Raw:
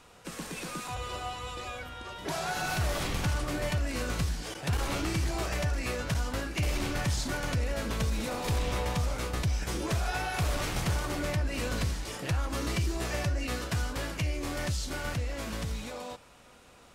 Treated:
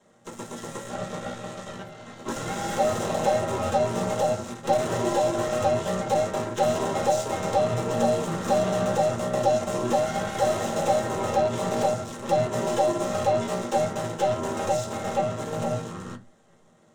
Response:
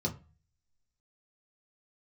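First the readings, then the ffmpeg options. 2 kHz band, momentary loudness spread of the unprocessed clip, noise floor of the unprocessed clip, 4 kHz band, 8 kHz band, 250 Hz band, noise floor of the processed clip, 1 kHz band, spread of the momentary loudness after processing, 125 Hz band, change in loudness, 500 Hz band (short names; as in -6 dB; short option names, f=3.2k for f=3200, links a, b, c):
-1.0 dB, 7 LU, -55 dBFS, -0.5 dB, +3.0 dB, +5.5 dB, -56 dBFS, +11.0 dB, 12 LU, -1.5 dB, +6.5 dB, +14.0 dB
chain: -filter_complex "[0:a]aeval=exprs='val(0)*sin(2*PI*680*n/s)':c=same,aeval=exprs='0.0794*(cos(1*acos(clip(val(0)/0.0794,-1,1)))-cos(1*PI/2))+0.00708*(cos(7*acos(clip(val(0)/0.0794,-1,1)))-cos(7*PI/2))+0.0126*(cos(8*acos(clip(val(0)/0.0794,-1,1)))-cos(8*PI/2))':c=same[a];[1:a]atrim=start_sample=2205,asetrate=66150,aresample=44100[b];[a][b]afir=irnorm=-1:irlink=0,volume=1.5dB"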